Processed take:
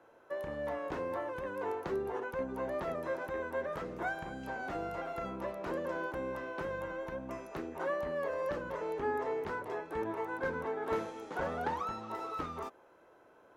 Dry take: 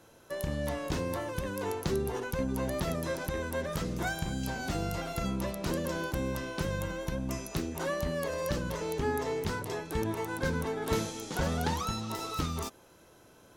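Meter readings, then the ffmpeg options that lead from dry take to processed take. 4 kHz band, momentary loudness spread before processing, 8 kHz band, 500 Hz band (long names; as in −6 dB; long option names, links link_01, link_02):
−15.0 dB, 4 LU, below −20 dB, −1.5 dB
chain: -filter_complex "[0:a]acrossover=split=330 2100:gain=0.158 1 0.0891[link_01][link_02][link_03];[link_01][link_02][link_03]amix=inputs=3:normalize=0"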